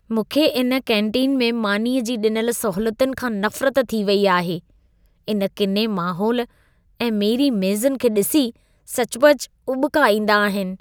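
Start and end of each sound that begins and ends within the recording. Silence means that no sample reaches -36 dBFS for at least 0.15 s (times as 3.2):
5.28–6.45
7–8.51
8.88–9.45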